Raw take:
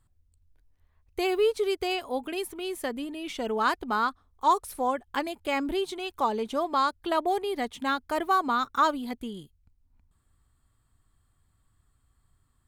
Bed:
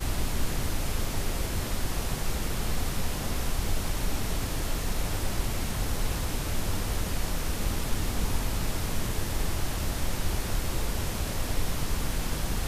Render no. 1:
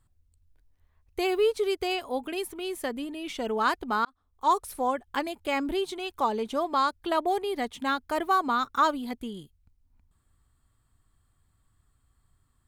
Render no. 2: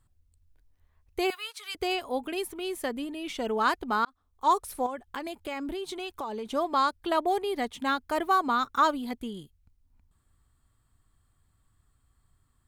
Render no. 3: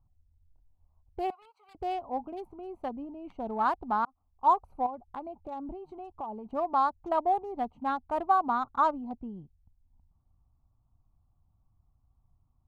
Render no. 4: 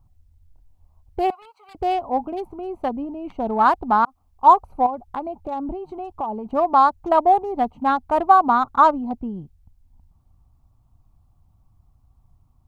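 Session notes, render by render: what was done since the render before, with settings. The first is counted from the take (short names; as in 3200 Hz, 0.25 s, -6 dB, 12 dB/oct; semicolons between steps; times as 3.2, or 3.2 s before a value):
4.05–4.55 fade in
1.3–1.75 HPF 1100 Hz 24 dB/oct; 4.86–6.53 compressor, threshold -31 dBFS
Wiener smoothing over 25 samples; EQ curve 170 Hz 0 dB, 460 Hz -9 dB, 790 Hz +5 dB, 1800 Hz -11 dB, 8600 Hz -18 dB
gain +11 dB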